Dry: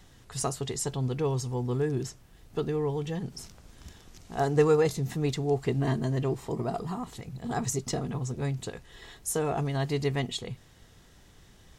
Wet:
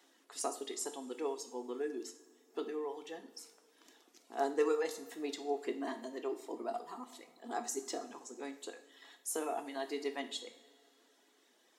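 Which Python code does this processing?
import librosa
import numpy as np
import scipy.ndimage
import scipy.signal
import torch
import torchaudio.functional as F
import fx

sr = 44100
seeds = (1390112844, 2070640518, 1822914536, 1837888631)

y = fx.dereverb_blind(x, sr, rt60_s=1.3)
y = scipy.signal.sosfilt(scipy.signal.ellip(4, 1.0, 50, 260.0, 'highpass', fs=sr, output='sos'), y)
y = fx.rev_double_slope(y, sr, seeds[0], early_s=0.52, late_s=2.9, knee_db=-18, drr_db=6.0)
y = y * librosa.db_to_amplitude(-6.5)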